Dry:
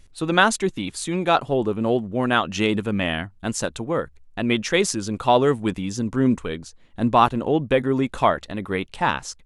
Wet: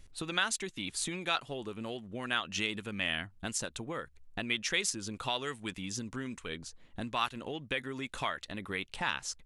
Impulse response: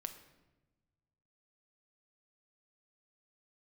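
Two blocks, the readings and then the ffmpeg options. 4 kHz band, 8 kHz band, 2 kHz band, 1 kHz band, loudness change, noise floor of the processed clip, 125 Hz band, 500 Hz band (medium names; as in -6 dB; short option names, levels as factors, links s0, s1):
-5.5 dB, -6.0 dB, -9.0 dB, -16.5 dB, -13.0 dB, -59 dBFS, -16.5 dB, -19.0 dB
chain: -filter_complex "[0:a]acrossover=split=1600[s0][s1];[s0]acompressor=threshold=0.0224:ratio=10[s2];[s1]alimiter=limit=0.211:level=0:latency=1:release=344[s3];[s2][s3]amix=inputs=2:normalize=0,volume=0.631"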